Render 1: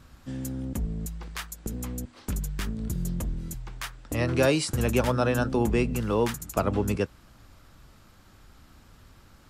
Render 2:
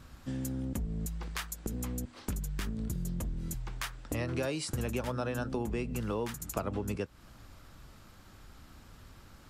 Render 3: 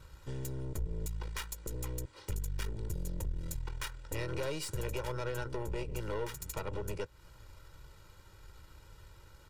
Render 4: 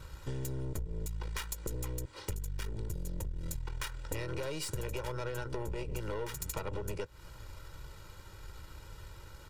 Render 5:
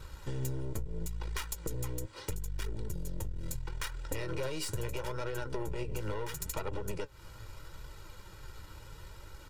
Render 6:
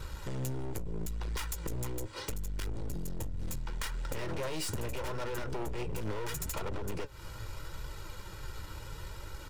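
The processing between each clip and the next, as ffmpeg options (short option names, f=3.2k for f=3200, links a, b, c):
-af "acompressor=threshold=-32dB:ratio=4"
-af "aeval=exprs='(tanh(50.1*val(0)+0.8)-tanh(0.8))/50.1':c=same,aecho=1:1:2.1:0.85"
-af "acompressor=threshold=-39dB:ratio=6,volume=6dB"
-af "flanger=delay=2.2:depth=8.1:regen=56:speed=0.75:shape=triangular,volume=5dB"
-af "asoftclip=type=hard:threshold=-37dB,volume=5.5dB"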